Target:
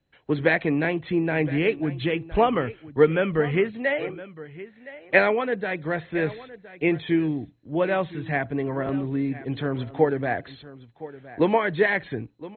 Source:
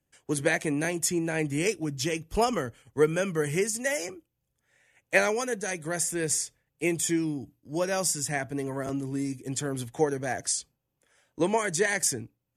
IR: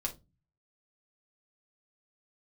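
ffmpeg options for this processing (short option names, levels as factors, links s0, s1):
-af "lowpass=3300,aecho=1:1:1015:0.141,volume=1.78" -ar 16000 -c:a mp2 -b:a 32k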